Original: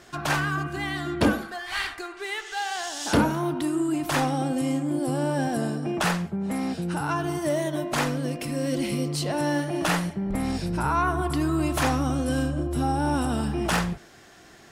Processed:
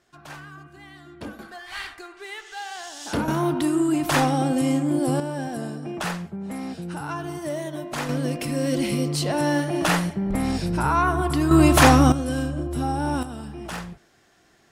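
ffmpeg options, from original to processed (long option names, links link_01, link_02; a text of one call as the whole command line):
ffmpeg -i in.wav -af "asetnsamples=nb_out_samples=441:pad=0,asendcmd='1.39 volume volume -5dB;3.28 volume volume 4dB;5.2 volume volume -4dB;8.09 volume volume 3dB;11.51 volume volume 10dB;12.12 volume volume -0.5dB;13.23 volume volume -9dB',volume=-15.5dB" out.wav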